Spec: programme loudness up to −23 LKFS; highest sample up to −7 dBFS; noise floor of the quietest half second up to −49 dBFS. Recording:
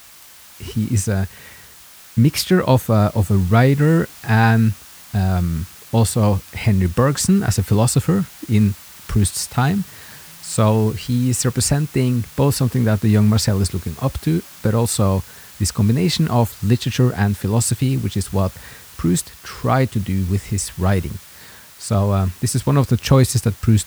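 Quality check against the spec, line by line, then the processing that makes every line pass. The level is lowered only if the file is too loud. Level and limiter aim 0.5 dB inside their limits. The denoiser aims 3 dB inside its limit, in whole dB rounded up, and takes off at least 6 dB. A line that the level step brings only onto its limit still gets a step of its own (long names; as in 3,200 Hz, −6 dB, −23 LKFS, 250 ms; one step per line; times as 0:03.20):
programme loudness −18.5 LKFS: out of spec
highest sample −2.0 dBFS: out of spec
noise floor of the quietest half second −44 dBFS: out of spec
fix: broadband denoise 6 dB, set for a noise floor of −44 dBFS
level −5 dB
brickwall limiter −7.5 dBFS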